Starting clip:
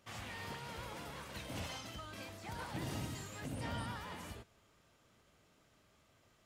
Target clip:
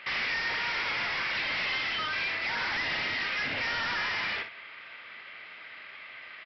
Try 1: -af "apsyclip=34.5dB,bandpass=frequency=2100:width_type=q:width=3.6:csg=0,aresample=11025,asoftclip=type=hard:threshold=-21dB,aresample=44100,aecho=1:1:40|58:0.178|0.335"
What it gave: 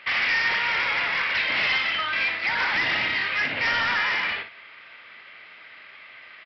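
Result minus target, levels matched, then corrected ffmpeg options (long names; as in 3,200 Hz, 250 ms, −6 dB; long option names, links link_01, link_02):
hard clipping: distortion −6 dB
-af "apsyclip=34.5dB,bandpass=frequency=2100:width_type=q:width=3.6:csg=0,aresample=11025,asoftclip=type=hard:threshold=-30.5dB,aresample=44100,aecho=1:1:40|58:0.178|0.335"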